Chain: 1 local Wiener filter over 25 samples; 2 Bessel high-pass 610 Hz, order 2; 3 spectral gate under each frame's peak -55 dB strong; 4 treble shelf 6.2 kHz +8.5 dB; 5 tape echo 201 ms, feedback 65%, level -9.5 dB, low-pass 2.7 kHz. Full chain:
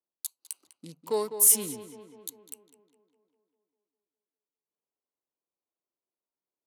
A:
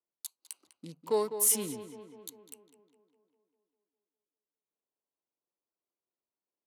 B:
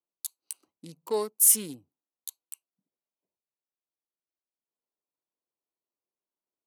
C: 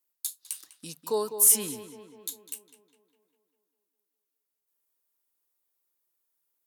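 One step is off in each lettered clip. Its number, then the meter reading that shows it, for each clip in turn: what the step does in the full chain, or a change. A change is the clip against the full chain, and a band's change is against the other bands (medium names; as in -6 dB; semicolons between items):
4, 8 kHz band -6.0 dB; 5, echo-to-direct -12.0 dB to none; 1, 2 kHz band +2.0 dB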